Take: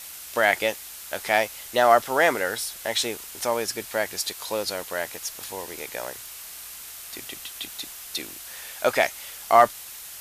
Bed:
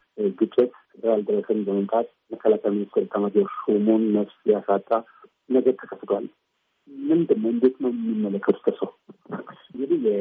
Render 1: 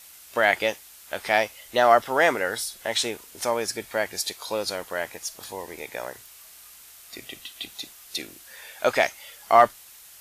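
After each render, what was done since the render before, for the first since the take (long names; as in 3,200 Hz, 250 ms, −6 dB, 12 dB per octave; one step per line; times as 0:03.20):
noise reduction from a noise print 8 dB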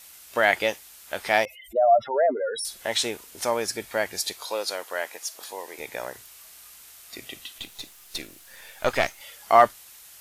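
0:01.45–0:02.65: expanding power law on the bin magnitudes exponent 3.9
0:04.46–0:05.79: high-pass filter 400 Hz
0:07.58–0:09.21: gain on one half-wave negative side −7 dB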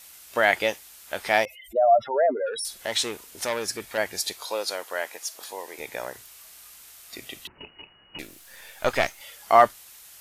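0:02.46–0:03.98: saturating transformer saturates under 2,000 Hz
0:07.47–0:08.19: voice inversion scrambler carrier 2,900 Hz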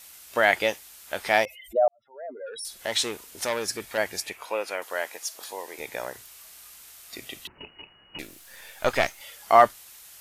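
0:01.88–0:02.86: fade in quadratic
0:04.20–0:04.82: high shelf with overshoot 3,200 Hz −8 dB, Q 3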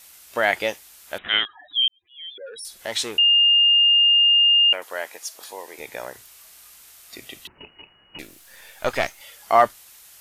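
0:01.18–0:02.38: voice inversion scrambler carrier 3,800 Hz
0:03.18–0:04.73: beep over 2,820 Hz −12.5 dBFS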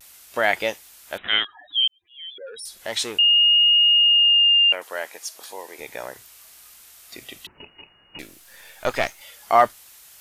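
pitch vibrato 0.34 Hz 20 cents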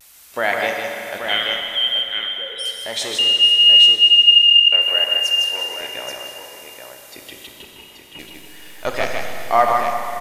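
multi-tap delay 156/831 ms −4.5/−7 dB
four-comb reverb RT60 3.5 s, combs from 31 ms, DRR 3 dB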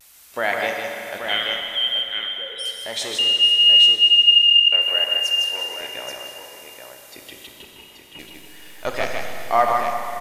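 level −2.5 dB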